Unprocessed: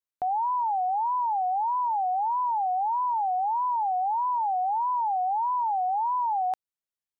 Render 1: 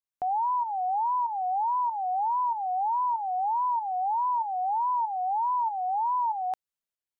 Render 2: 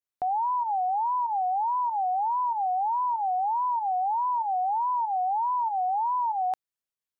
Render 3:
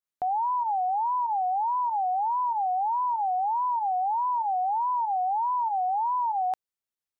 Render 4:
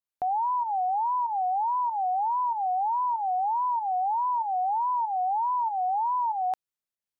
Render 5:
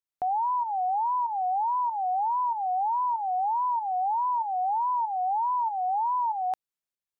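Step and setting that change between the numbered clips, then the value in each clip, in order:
fake sidechain pumping, release: 529, 128, 70, 202, 316 milliseconds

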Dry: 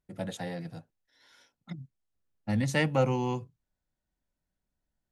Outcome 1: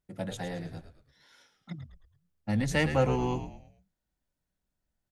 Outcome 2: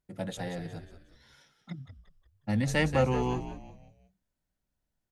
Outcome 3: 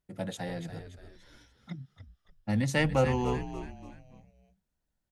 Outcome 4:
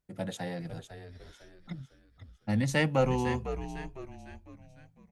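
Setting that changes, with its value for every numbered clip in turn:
echo with shifted repeats, delay time: 109, 181, 288, 503 milliseconds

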